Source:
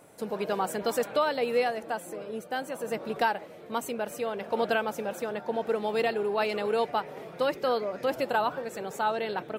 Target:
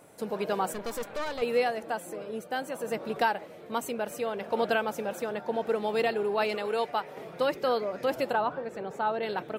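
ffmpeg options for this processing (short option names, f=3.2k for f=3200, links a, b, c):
-filter_complex "[0:a]asettb=1/sr,asplit=3[a][b][c];[a]atrim=end=0.734[d];[b]atrim=start=0.73:end=1.42,asetpts=PTS-STARTPTS,afade=t=in:d=0.004:c=qsin,afade=t=out:st=0.686:d=0.004:c=qsin,aeval=exprs='(tanh(31.6*val(0)+0.75)-tanh(0.75))/31.6':c=same[e];[c]atrim=start=1.416[f];[d][e]acrossfade=d=0.004:c1=hsin:c2=qsin[g];[g][f]acrossfade=d=0.004:c1=qsin:c2=hsin,asettb=1/sr,asplit=3[h][i][j];[h]atrim=end=6.554[k];[i]atrim=start=6.55:end=7.17,asetpts=PTS-STARTPTS,afade=t=in:d=0.004:c=qsin,afade=t=out:st=0.616:d=0.004:c=qsin,lowshelf=f=390:g=-6.5[l];[j]atrim=start=7.166[m];[k][l]acrossfade=d=0.004:c1=hsin:c2=qsin[n];[n][m]acrossfade=d=0.004:c1=qsin:c2=hsin,asettb=1/sr,asplit=3[o][p][q];[o]atrim=end=8.334[r];[p]atrim=start=8.33:end=9.23,asetpts=PTS-STARTPTS,afade=t=in:d=0.004:c=qsin,afade=t=out:st=0.896:d=0.004:c=qsin,lowpass=f=1.7k:p=1[s];[q]atrim=start=9.226[t];[r][s]acrossfade=d=0.004:c1=hsin:c2=qsin[u];[u][t]acrossfade=d=0.004:c1=qsin:c2=hsin"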